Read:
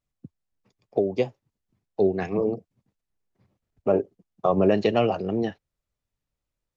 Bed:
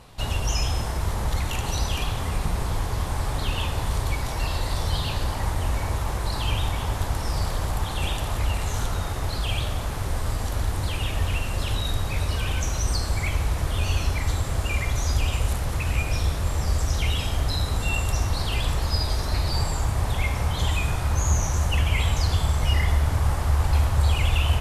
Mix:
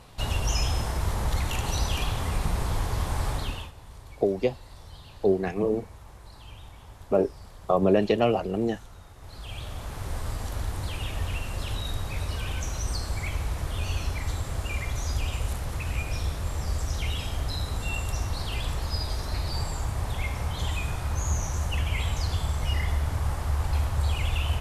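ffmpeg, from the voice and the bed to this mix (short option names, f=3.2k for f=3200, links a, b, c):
-filter_complex "[0:a]adelay=3250,volume=-1dB[a];[1:a]volume=13.5dB,afade=t=out:st=3.29:d=0.43:silence=0.112202,afade=t=in:st=9.17:d=0.97:silence=0.177828[b];[a][b]amix=inputs=2:normalize=0"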